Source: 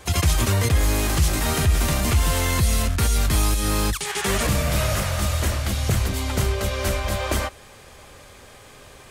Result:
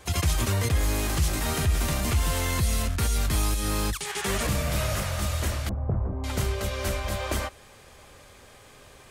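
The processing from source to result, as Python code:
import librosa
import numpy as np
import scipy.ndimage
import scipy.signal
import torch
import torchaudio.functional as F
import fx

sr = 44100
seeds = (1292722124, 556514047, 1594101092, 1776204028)

y = fx.lowpass(x, sr, hz=1000.0, slope=24, at=(5.69, 6.24))
y = y * librosa.db_to_amplitude(-5.0)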